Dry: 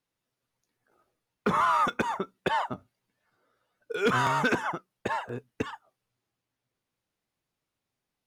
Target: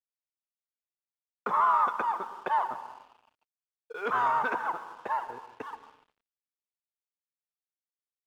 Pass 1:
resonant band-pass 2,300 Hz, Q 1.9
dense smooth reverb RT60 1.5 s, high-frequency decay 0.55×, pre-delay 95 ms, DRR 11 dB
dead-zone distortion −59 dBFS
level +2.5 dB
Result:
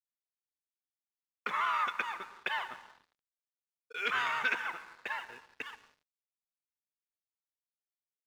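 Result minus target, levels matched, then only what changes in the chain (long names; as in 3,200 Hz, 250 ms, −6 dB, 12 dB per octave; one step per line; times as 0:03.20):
2,000 Hz band +8.5 dB
change: resonant band-pass 940 Hz, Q 1.9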